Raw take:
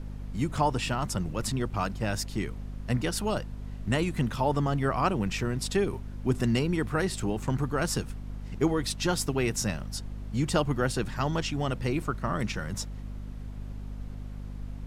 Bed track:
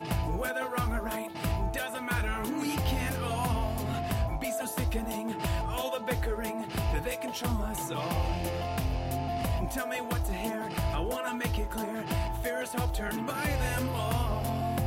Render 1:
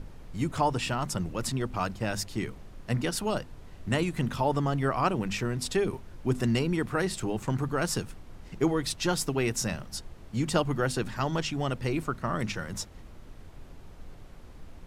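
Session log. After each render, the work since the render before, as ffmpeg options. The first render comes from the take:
-af "bandreject=f=50:t=h:w=6,bandreject=f=100:t=h:w=6,bandreject=f=150:t=h:w=6,bandreject=f=200:t=h:w=6,bandreject=f=250:t=h:w=6"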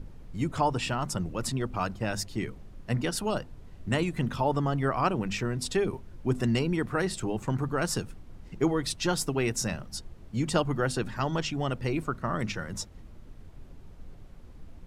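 -af "afftdn=nr=6:nf=-48"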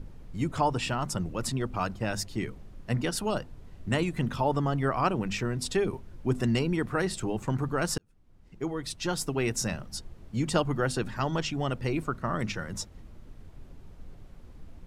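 -filter_complex "[0:a]asplit=2[s0][s1];[s0]atrim=end=7.98,asetpts=PTS-STARTPTS,afade=t=out:st=7.976:d=0.004:c=hsin[s2];[s1]atrim=start=7.98,asetpts=PTS-STARTPTS,afade=t=in:d=1.55[s3];[s2][s3]concat=n=2:v=0:a=1"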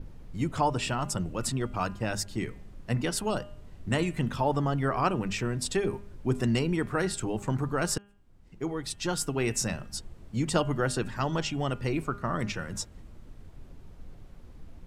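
-af "adynamicequalizer=threshold=0.002:dfrequency=8000:dqfactor=4:tfrequency=8000:tqfactor=4:attack=5:release=100:ratio=0.375:range=2.5:mode=boostabove:tftype=bell,bandreject=f=202.3:t=h:w=4,bandreject=f=404.6:t=h:w=4,bandreject=f=606.9:t=h:w=4,bandreject=f=809.2:t=h:w=4,bandreject=f=1011.5:t=h:w=4,bandreject=f=1213.8:t=h:w=4,bandreject=f=1416.1:t=h:w=4,bandreject=f=1618.4:t=h:w=4,bandreject=f=1820.7:t=h:w=4,bandreject=f=2023:t=h:w=4,bandreject=f=2225.3:t=h:w=4,bandreject=f=2427.6:t=h:w=4,bandreject=f=2629.9:t=h:w=4,bandreject=f=2832.2:t=h:w=4,bandreject=f=3034.5:t=h:w=4,bandreject=f=3236.8:t=h:w=4"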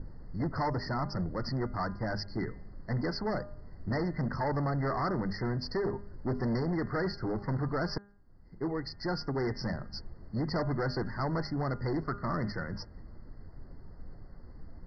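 -af "aresample=11025,asoftclip=type=hard:threshold=0.0422,aresample=44100,afftfilt=real='re*eq(mod(floor(b*sr/1024/2100),2),0)':imag='im*eq(mod(floor(b*sr/1024/2100),2),0)':win_size=1024:overlap=0.75"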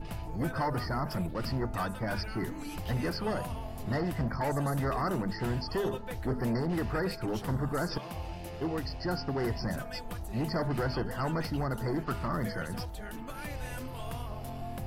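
-filter_complex "[1:a]volume=0.335[s0];[0:a][s0]amix=inputs=2:normalize=0"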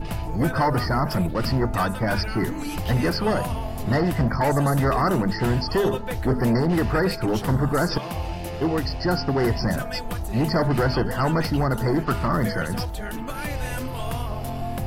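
-af "volume=3.16"

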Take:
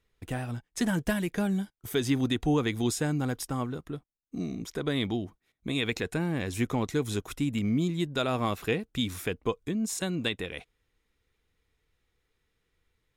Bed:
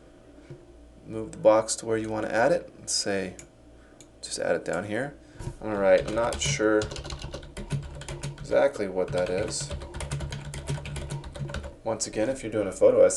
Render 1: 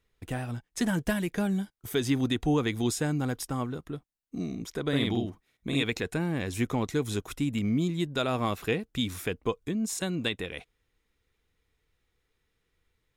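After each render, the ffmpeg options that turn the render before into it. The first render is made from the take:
-filter_complex "[0:a]asettb=1/sr,asplit=3[s0][s1][s2];[s0]atrim=end=4.884[s3];[s1]atrim=start=4.88:end=5.83,asetpts=PTS-STARTPTS,afade=t=in:d=0.004:c=qsin,afade=t=out:st=0.946:d=0.004:c=qsin,asplit=2[s4][s5];[s5]adelay=50,volume=0.794[s6];[s4][s6]amix=inputs=2:normalize=0,atrim=end_sample=41895[s7];[s2]atrim=start=5.826[s8];[s3][s7]acrossfade=d=0.004:c1=hsin:c2=qsin[s9];[s9][s8]acrossfade=d=0.004:c1=qsin:c2=hsin"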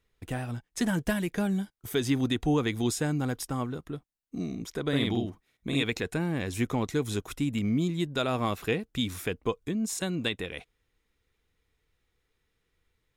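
-af anull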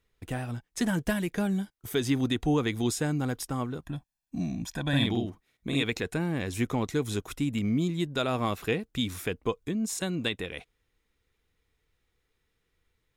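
-filter_complex "[0:a]asettb=1/sr,asplit=3[s0][s1][s2];[s0]atrim=end=3.824[s3];[s1]atrim=start=3.82:end=5.06,asetpts=PTS-STARTPTS,afade=t=in:d=0.004:c=qsin,afade=t=out:st=1.236:d=0.004:c=qsin,aecho=1:1:1.2:0.95,atrim=end_sample=54684[s4];[s2]atrim=start=5.056[s5];[s3][s4]acrossfade=d=0.004:c1=hsin:c2=qsin[s6];[s6][s5]acrossfade=d=0.004:c1=qsin:c2=hsin"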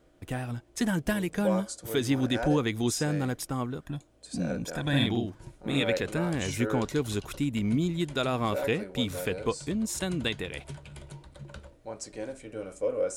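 -filter_complex "[1:a]volume=0.299[s0];[0:a][s0]amix=inputs=2:normalize=0"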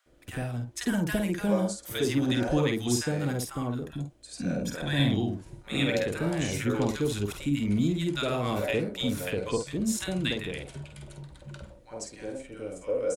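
-filter_complex "[0:a]asplit=2[s0][s1];[s1]adelay=49,volume=0.501[s2];[s0][s2]amix=inputs=2:normalize=0,acrossover=split=1000[s3][s4];[s3]adelay=60[s5];[s5][s4]amix=inputs=2:normalize=0"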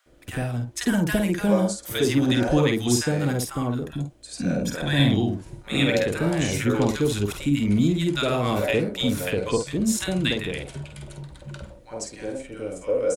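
-af "volume=1.88"

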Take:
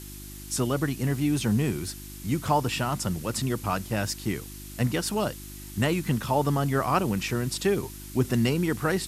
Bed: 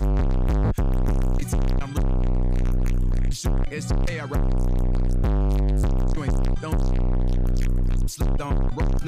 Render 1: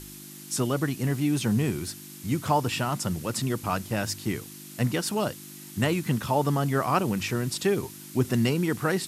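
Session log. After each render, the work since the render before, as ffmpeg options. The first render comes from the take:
-af "bandreject=f=50:t=h:w=4,bandreject=f=100:t=h:w=4"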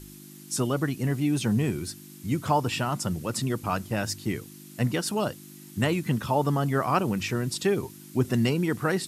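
-af "afftdn=nr=6:nf=-44"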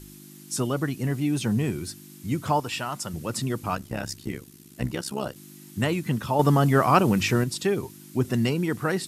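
-filter_complex "[0:a]asettb=1/sr,asplit=3[s0][s1][s2];[s0]atrim=end=2.604[s3];[s1]atrim=start=2.6:end=3.14,asetpts=PTS-STARTPTS,afade=t=in:d=0.004:c=qsin,afade=t=out:st=0.536:d=0.004:c=qsin,lowshelf=f=440:g=-9[s4];[s2]atrim=start=3.136[s5];[s3][s4]acrossfade=d=0.004:c1=hsin:c2=qsin[s6];[s6][s5]acrossfade=d=0.004:c1=qsin:c2=hsin,asettb=1/sr,asplit=3[s7][s8][s9];[s7]atrim=end=3.754[s10];[s8]atrim=start=3.75:end=5.36,asetpts=PTS-STARTPTS,afade=t=in:d=0.004:c=qsin,afade=t=out:st=1.606:d=0.004:c=qsin,tremolo=f=67:d=0.788[s11];[s9]atrim=start=5.356[s12];[s10][s11]acrossfade=d=0.004:c1=hsin:c2=qsin[s13];[s13][s12]acrossfade=d=0.004:c1=qsin:c2=hsin,asettb=1/sr,asplit=3[s14][s15][s16];[s14]atrim=end=6.394[s17];[s15]atrim=start=6.39:end=7.44,asetpts=PTS-STARTPTS,afade=t=in:d=0.004:c=qsin,afade=t=out:st=1.046:d=0.004:c=qsin,acontrast=49[s18];[s16]atrim=start=7.436[s19];[s17][s18]acrossfade=d=0.004:c1=hsin:c2=qsin[s20];[s20][s19]acrossfade=d=0.004:c1=qsin:c2=hsin"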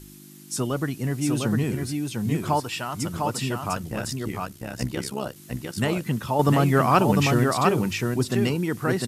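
-af "aecho=1:1:702:0.668"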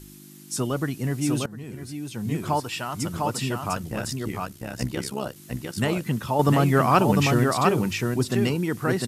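-filter_complex "[0:a]asplit=2[s0][s1];[s0]atrim=end=1.46,asetpts=PTS-STARTPTS,afade=t=out:st=1.456:d=0.004:c=hsin:silence=0.0794328[s2];[s1]atrim=start=1.46,asetpts=PTS-STARTPTS,afade=t=in:d=1.66:c=qsin:silence=0.0794328[s3];[s2][s3]concat=n=2:v=0:a=1"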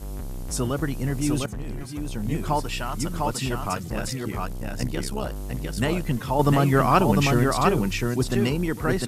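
-filter_complex "[1:a]volume=0.237[s0];[0:a][s0]amix=inputs=2:normalize=0"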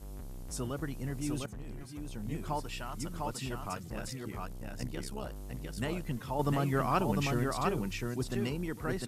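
-af "volume=0.282"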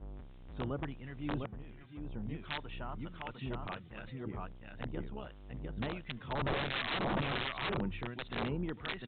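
-filter_complex "[0:a]aresample=8000,aeval=exprs='(mod(20*val(0)+1,2)-1)/20':c=same,aresample=44100,acrossover=split=1400[s0][s1];[s0]aeval=exprs='val(0)*(1-0.7/2+0.7/2*cos(2*PI*1.4*n/s))':c=same[s2];[s1]aeval=exprs='val(0)*(1-0.7/2-0.7/2*cos(2*PI*1.4*n/s))':c=same[s3];[s2][s3]amix=inputs=2:normalize=0"

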